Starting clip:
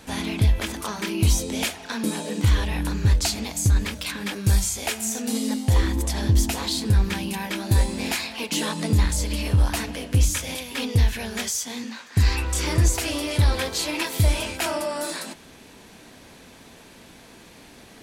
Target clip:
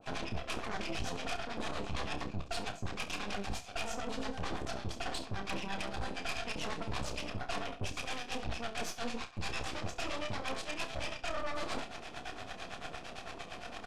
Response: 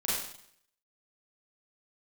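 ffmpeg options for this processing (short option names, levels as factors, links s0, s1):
-filter_complex "[0:a]acrossover=split=550[s0][s1];[s0]aeval=exprs='val(0)*(1-1/2+1/2*cos(2*PI*6.8*n/s))':c=same[s2];[s1]aeval=exprs='val(0)*(1-1/2-1/2*cos(2*PI*6.8*n/s))':c=same[s3];[s2][s3]amix=inputs=2:normalize=0,acrossover=split=5700[s4][s5];[s5]acompressor=threshold=0.00447:ratio=4:attack=1:release=60[s6];[s4][s6]amix=inputs=2:normalize=0,highshelf=f=5000:g=2.5,asplit=2[s7][s8];[s8]asoftclip=type=tanh:threshold=0.0376,volume=0.299[s9];[s7][s9]amix=inputs=2:normalize=0,atempo=1.3,asplit=3[s10][s11][s12];[s10]bandpass=f=730:t=q:w=8,volume=1[s13];[s11]bandpass=f=1090:t=q:w=8,volume=0.501[s14];[s12]bandpass=f=2440:t=q:w=8,volume=0.355[s15];[s13][s14][s15]amix=inputs=3:normalize=0,bass=f=250:g=10,treble=f=4000:g=6,areverse,acompressor=threshold=0.00224:ratio=16,areverse,aeval=exprs='0.00668*(cos(1*acos(clip(val(0)/0.00668,-1,1)))-cos(1*PI/2))+0.00237*(cos(6*acos(clip(val(0)/0.00668,-1,1)))-cos(6*PI/2))':c=same,lowpass=9100,aecho=1:1:30|68:0.355|0.168,volume=5.31"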